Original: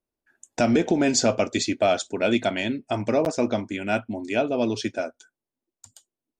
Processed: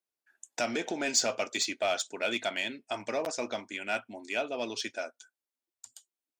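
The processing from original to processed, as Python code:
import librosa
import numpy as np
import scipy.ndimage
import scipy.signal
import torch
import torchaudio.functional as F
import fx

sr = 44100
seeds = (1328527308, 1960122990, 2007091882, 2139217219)

p1 = fx.highpass(x, sr, hz=1400.0, slope=6)
p2 = np.clip(10.0 ** (26.5 / 20.0) * p1, -1.0, 1.0) / 10.0 ** (26.5 / 20.0)
p3 = p1 + F.gain(torch.from_numpy(p2), -5.5).numpy()
y = F.gain(torch.from_numpy(p3), -4.5).numpy()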